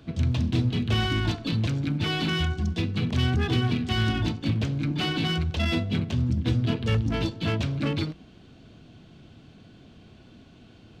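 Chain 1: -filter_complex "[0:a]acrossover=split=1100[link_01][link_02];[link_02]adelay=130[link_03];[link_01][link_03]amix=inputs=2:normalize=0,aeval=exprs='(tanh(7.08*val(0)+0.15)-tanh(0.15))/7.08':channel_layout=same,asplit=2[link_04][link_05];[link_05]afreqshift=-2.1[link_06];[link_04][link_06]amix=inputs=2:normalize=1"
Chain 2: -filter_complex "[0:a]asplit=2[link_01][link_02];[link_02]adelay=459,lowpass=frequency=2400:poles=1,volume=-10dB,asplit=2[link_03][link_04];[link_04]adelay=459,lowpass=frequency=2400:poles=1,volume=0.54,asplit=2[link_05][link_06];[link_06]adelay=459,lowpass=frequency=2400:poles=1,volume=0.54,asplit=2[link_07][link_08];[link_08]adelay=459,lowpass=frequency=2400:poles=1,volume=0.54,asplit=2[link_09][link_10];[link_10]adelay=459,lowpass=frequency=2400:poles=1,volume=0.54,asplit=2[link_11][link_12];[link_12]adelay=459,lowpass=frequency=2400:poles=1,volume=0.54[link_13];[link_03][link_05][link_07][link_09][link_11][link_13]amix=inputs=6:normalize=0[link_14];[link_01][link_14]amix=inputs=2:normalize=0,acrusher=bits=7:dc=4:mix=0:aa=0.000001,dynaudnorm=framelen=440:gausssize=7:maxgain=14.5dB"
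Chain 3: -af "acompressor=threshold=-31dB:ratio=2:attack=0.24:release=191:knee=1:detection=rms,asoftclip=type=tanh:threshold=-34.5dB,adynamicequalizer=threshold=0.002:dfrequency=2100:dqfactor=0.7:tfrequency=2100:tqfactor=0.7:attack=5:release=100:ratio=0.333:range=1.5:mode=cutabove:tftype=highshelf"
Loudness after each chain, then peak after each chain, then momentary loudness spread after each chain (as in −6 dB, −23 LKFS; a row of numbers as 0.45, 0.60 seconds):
−30.5, −16.5, −39.0 LKFS; −17.5, −1.5, −34.5 dBFS; 3, 12, 13 LU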